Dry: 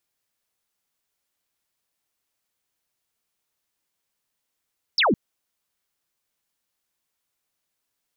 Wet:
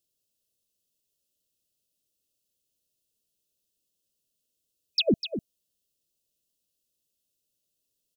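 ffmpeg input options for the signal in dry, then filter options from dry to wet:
-f lavfi -i "aevalsrc='0.158*clip(t/0.002,0,1)*clip((0.16-t)/0.002,0,1)*sin(2*PI*5600*0.16/log(170/5600)*(exp(log(170/5600)*t/0.16)-1))':duration=0.16:sample_rate=44100"
-filter_complex "[0:a]afftfilt=real='re*(1-between(b*sr/4096,660,2500))':imag='im*(1-between(b*sr/4096,660,2500))':win_size=4096:overlap=0.75,equalizer=frequency=1600:width_type=o:width=1.7:gain=-8,asplit=2[link_01][link_02];[link_02]aecho=0:1:250:0.316[link_03];[link_01][link_03]amix=inputs=2:normalize=0"

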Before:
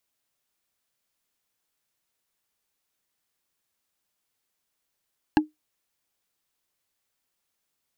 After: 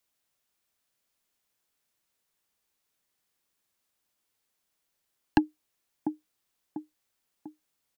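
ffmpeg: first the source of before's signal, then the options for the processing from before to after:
-f lavfi -i "aevalsrc='0.266*pow(10,-3*t/0.16)*sin(2*PI*306*t)+0.188*pow(10,-3*t/0.047)*sin(2*PI*843.6*t)+0.133*pow(10,-3*t/0.021)*sin(2*PI*1653.6*t)+0.0944*pow(10,-3*t/0.012)*sin(2*PI*2733.5*t)+0.0668*pow(10,-3*t/0.007)*sin(2*PI*4082*t)':duration=0.45:sample_rate=44100"
-filter_complex "[0:a]acrossover=split=130|840|1300[link_01][link_02][link_03][link_04];[link_02]aecho=1:1:695|1390|2085|2780|3475:0.422|0.194|0.0892|0.041|0.0189[link_05];[link_01][link_05][link_03][link_04]amix=inputs=4:normalize=0"

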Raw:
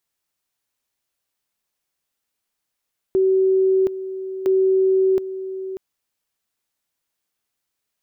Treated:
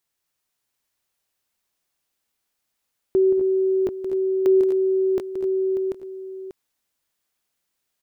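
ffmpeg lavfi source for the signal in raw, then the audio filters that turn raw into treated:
-f lavfi -i "aevalsrc='pow(10,(-13.5-12.5*gte(mod(t,1.31),0.72))/20)*sin(2*PI*380*t)':duration=2.62:sample_rate=44100"
-af "aecho=1:1:175|229|246|261|739:0.335|0.1|0.299|0.282|0.531"

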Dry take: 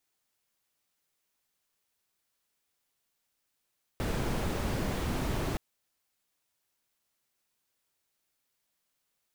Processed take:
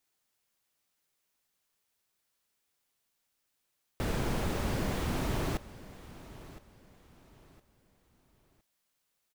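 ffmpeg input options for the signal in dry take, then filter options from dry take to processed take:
-f lavfi -i "anoisesrc=color=brown:amplitude=0.132:duration=1.57:sample_rate=44100:seed=1"
-af "aecho=1:1:1013|2026|3039:0.141|0.0452|0.0145"

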